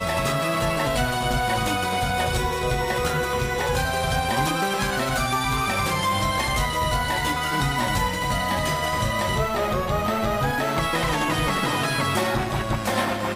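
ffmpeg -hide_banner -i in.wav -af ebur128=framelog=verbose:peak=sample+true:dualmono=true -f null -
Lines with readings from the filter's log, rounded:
Integrated loudness:
  I:         -20.2 LUFS
  Threshold: -30.2 LUFS
Loudness range:
  LRA:         0.6 LU
  Threshold: -40.2 LUFS
  LRA low:   -20.5 LUFS
  LRA high:  -19.9 LUFS
Sample peak:
  Peak:      -10.6 dBFS
True peak:
  Peak:      -10.5 dBFS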